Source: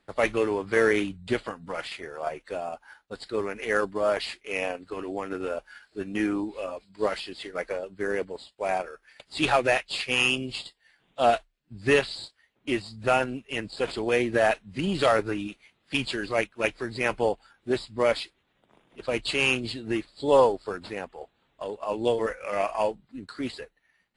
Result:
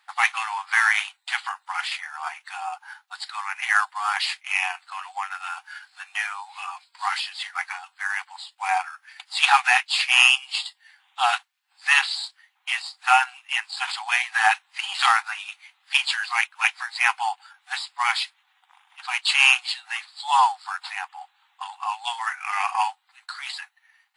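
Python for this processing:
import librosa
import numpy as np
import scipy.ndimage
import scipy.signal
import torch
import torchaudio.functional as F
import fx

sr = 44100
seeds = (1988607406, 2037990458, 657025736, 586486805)

y = fx.brickwall_highpass(x, sr, low_hz=730.0)
y = y * librosa.db_to_amplitude(8.5)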